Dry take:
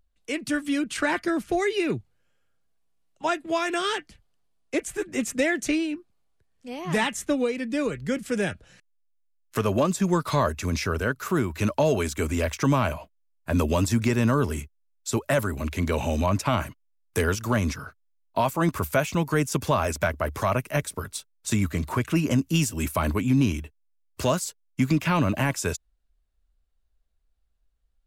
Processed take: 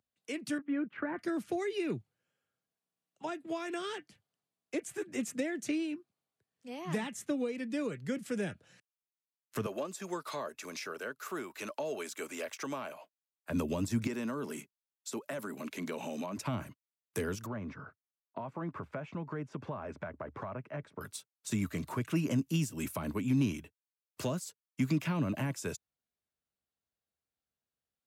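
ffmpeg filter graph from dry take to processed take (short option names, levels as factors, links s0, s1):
-filter_complex "[0:a]asettb=1/sr,asplit=3[s0][s1][s2];[s0]atrim=end=0.584[s3];[s1]atrim=start=0.58:end=1.19,asetpts=PTS-STARTPTS,afade=t=in:d=0.004:c=qsin,afade=t=out:st=0.606:d=0.004:c=qsin,agate=range=0.2:threshold=0.0158:ratio=16:release=100:detection=peak,lowpass=f=1900:w=0.5412,lowpass=f=1900:w=1.3066[s4];[s2]atrim=start=1.186[s5];[s3][s4]acrossfade=d=0.004:c1=hsin:c2=qsin[s6];[s6][s5]acrossfade=d=0.004:c1=qsin:c2=hsin,asettb=1/sr,asplit=3[s7][s8][s9];[s7]atrim=end=9.664[s10];[s8]atrim=start=9.66:end=13.5,asetpts=PTS-STARTPTS,afade=t=in:d=0.004:c=qsin,afade=t=out:st=3.836:d=0.004:c=qsin,highpass=460,bandreject=f=980:w=17[s11];[s9]atrim=start=13.496[s12];[s10][s11]acrossfade=d=0.004:c1=hsin:c2=qsin[s13];[s13][s12]acrossfade=d=0.004:c1=qsin:c2=hsin,asettb=1/sr,asplit=3[s14][s15][s16];[s14]atrim=end=14.074[s17];[s15]atrim=start=14.07:end=16.37,asetpts=PTS-STARTPTS,afade=t=in:d=0.004:c=qsin,afade=t=out:st=2.296:d=0.004:c=qsin,highpass=f=180:w=0.5412,highpass=f=180:w=1.3066,acompressor=threshold=0.0398:ratio=2:attack=3.2:release=140:knee=1:detection=peak[s18];[s16]atrim=start=16.366[s19];[s17][s18]acrossfade=d=0.004:c1=hsin:c2=qsin[s20];[s20][s19]acrossfade=d=0.004:c1=qsin:c2=hsin,asettb=1/sr,asplit=3[s21][s22][s23];[s21]atrim=end=17.464[s24];[s22]atrim=start=17.46:end=21.01,asetpts=PTS-STARTPTS,afade=t=in:d=0.004:c=qsin,afade=t=out:st=3.546:d=0.004:c=qsin,lowpass=1600,acompressor=threshold=0.0398:ratio=3:attack=3.2:release=140:knee=1:detection=peak[s25];[s23]atrim=start=21.006[s26];[s24][s25]acrossfade=d=0.004:c1=hsin:c2=qsin[s27];[s27][s26]acrossfade=d=0.004:c1=qsin:c2=hsin,highpass=f=110:w=0.5412,highpass=f=110:w=1.3066,acrossover=split=440[s28][s29];[s29]acompressor=threshold=0.0282:ratio=6[s30];[s28][s30]amix=inputs=2:normalize=0,volume=0.422"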